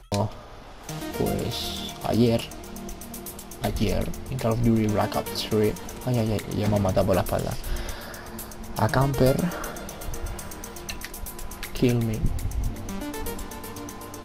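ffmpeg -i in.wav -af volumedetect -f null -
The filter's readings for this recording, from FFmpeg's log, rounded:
mean_volume: -26.5 dB
max_volume: -7.9 dB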